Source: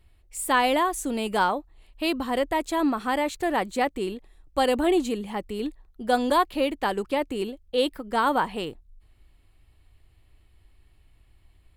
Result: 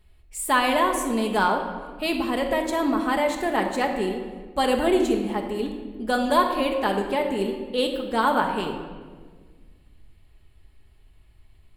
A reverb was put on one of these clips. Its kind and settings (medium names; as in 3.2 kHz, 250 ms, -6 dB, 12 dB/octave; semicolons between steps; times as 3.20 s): simulated room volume 1700 m³, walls mixed, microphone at 1.4 m